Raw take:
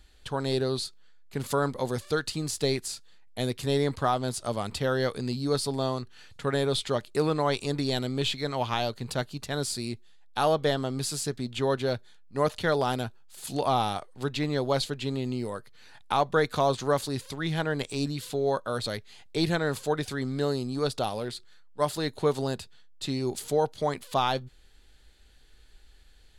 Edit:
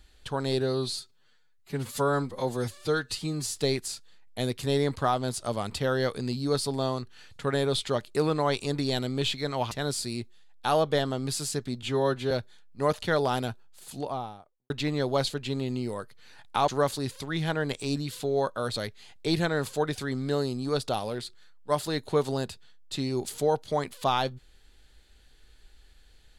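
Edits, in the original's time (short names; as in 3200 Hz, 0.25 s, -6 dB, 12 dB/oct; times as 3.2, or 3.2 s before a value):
0.6–2.6 stretch 1.5×
8.71–9.43 cut
11.55–11.87 stretch 1.5×
13.06–14.26 studio fade out
16.24–16.78 cut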